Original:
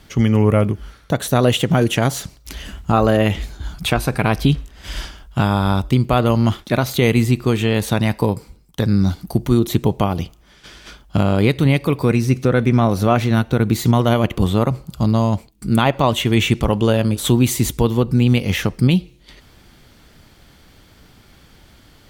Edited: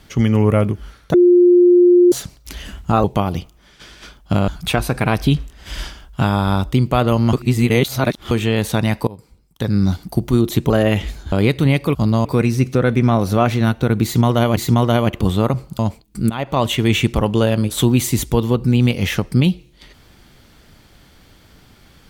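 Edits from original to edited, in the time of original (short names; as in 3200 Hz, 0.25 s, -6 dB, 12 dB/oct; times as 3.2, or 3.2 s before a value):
1.14–2.12 bleep 354 Hz -6.5 dBFS
3.04–3.66 swap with 9.88–11.32
6.51–7.49 reverse
8.25–9 fade in linear, from -21 dB
13.74–14.27 loop, 2 plays
14.96–15.26 move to 11.95
15.77–16.12 fade in, from -15.5 dB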